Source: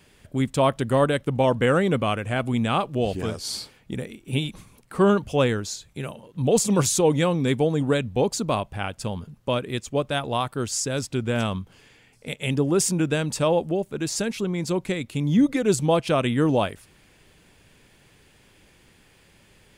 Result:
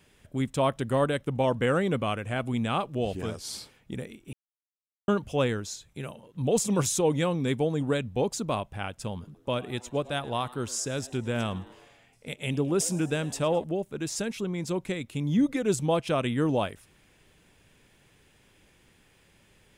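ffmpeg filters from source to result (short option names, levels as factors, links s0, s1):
-filter_complex "[0:a]asettb=1/sr,asplit=3[s0][s1][s2];[s0]atrim=end=9.134[s3];[s1]atrim=start=9.13:end=13.64,asetpts=PTS-STARTPTS,afade=t=in:d=0.004:c=qsin,afade=t=out:st=4.506:d=0.004:c=qsin,asplit=6[s4][s5][s6][s7][s8][s9];[s5]adelay=107,afreqshift=120,volume=0.0944[s10];[s6]adelay=214,afreqshift=240,volume=0.0556[s11];[s7]adelay=321,afreqshift=360,volume=0.0327[s12];[s8]adelay=428,afreqshift=480,volume=0.0195[s13];[s9]adelay=535,afreqshift=600,volume=0.0115[s14];[s4][s10][s11][s12][s13][s14]amix=inputs=6:normalize=0,atrim=end_sample=198891[s15];[s2]atrim=start=13.636[s16];[s3][s15]acrossfade=d=0.004:c1=hsin:c2=qsin[s17];[s17][s16]acrossfade=d=0.004:c1=qsin:c2=hsin,asplit=3[s18][s19][s20];[s18]atrim=end=4.33,asetpts=PTS-STARTPTS,afade=t=out:st=4.326:d=0.004:c=hsin[s21];[s19]atrim=start=4.33:end=5.08,asetpts=PTS-STARTPTS,volume=0[s22];[s20]atrim=start=5.08,asetpts=PTS-STARTPTS,afade=t=in:d=0.004:c=hsin[s23];[s21][s22][s23]concat=n=3:v=0:a=1,bandreject=f=4500:w=13,volume=0.562"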